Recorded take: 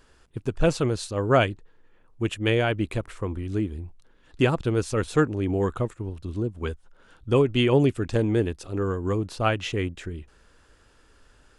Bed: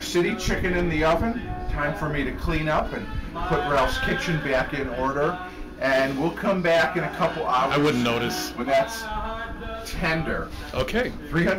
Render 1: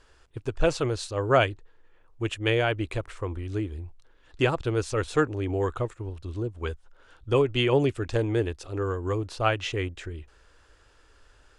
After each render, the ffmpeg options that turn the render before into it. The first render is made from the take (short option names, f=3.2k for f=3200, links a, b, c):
-af "lowpass=8.6k,equalizer=f=200:t=o:w=0.72:g=-13.5"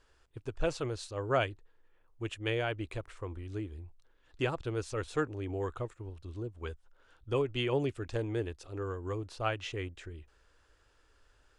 -af "volume=-8.5dB"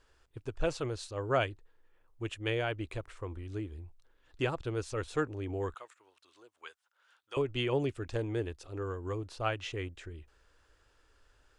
-filter_complex "[0:a]asettb=1/sr,asplit=3[a][b][c];[a]atrim=end=5.744[d];[b]atrim=start=5.74:end=7.37,asetpts=PTS-STARTPTS,afade=t=in:d=0.004:c=qsin,afade=t=out:st=1.626:d=0.004:c=qsin,highpass=1.1k[e];[c]atrim=start=7.366[f];[d][e]acrossfade=d=0.004:c1=hsin:c2=qsin[g];[g][f]acrossfade=d=0.004:c1=qsin:c2=hsin"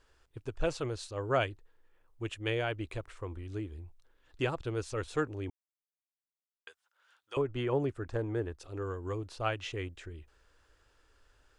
-filter_complex "[0:a]asettb=1/sr,asplit=3[a][b][c];[a]atrim=end=7.374[d];[b]atrim=start=7.37:end=8.6,asetpts=PTS-STARTPTS,afade=t=in:d=0.004:c=qsin,afade=t=out:st=1.226:d=0.004:c=qsin,highshelf=f=2k:t=q:w=1.5:g=-7[e];[c]atrim=start=8.596[f];[d][e]acrossfade=d=0.004:c1=hsin:c2=qsin[g];[g][f]acrossfade=d=0.004:c1=qsin:c2=hsin,asplit=3[h][i][j];[h]atrim=end=5.5,asetpts=PTS-STARTPTS,afade=t=out:st=5.496:d=0.004:c=hsin[k];[i]atrim=start=5.5:end=6.67,asetpts=PTS-STARTPTS,volume=0[l];[j]atrim=start=6.67,asetpts=PTS-STARTPTS,afade=t=in:d=0.004:c=hsin[m];[k][l][m]concat=n=3:v=0:a=1"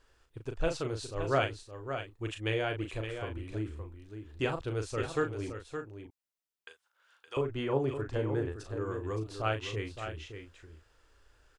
-filter_complex "[0:a]asplit=2[a][b];[b]adelay=37,volume=-6.5dB[c];[a][c]amix=inputs=2:normalize=0,asplit=2[d][e];[e]aecho=0:1:567:0.376[f];[d][f]amix=inputs=2:normalize=0"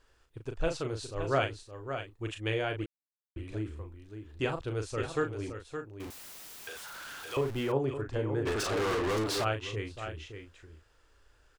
-filter_complex "[0:a]asettb=1/sr,asplit=3[a][b][c];[a]atrim=end=6.004[d];[b]atrim=start=6:end=7.72,asetpts=PTS-STARTPTS,afade=t=in:d=0.004:c=qsin,afade=t=out:st=1.716:d=0.004:c=qsin,aeval=exprs='val(0)+0.5*0.0119*sgn(val(0))':c=same[e];[c]atrim=start=7.716[f];[d][e]acrossfade=d=0.004:c1=hsin:c2=qsin[g];[g][f]acrossfade=d=0.004:c1=qsin:c2=hsin,asplit=3[h][i][j];[h]afade=t=out:st=8.45:d=0.02[k];[i]asplit=2[l][m];[m]highpass=f=720:p=1,volume=35dB,asoftclip=type=tanh:threshold=-24dB[n];[l][n]amix=inputs=2:normalize=0,lowpass=f=6.7k:p=1,volume=-6dB,afade=t=in:st=8.45:d=0.02,afade=t=out:st=9.43:d=0.02[o];[j]afade=t=in:st=9.43:d=0.02[p];[k][o][p]amix=inputs=3:normalize=0,asplit=3[q][r][s];[q]atrim=end=2.86,asetpts=PTS-STARTPTS,afade=t=out:st=2.856:d=0.004:c=hsin[t];[r]atrim=start=2.86:end=3.36,asetpts=PTS-STARTPTS,volume=0[u];[s]atrim=start=3.36,asetpts=PTS-STARTPTS,afade=t=in:d=0.004:c=hsin[v];[t][u][v]concat=n=3:v=0:a=1"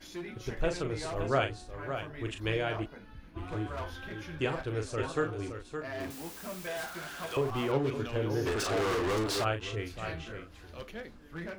-filter_complex "[1:a]volume=-19dB[a];[0:a][a]amix=inputs=2:normalize=0"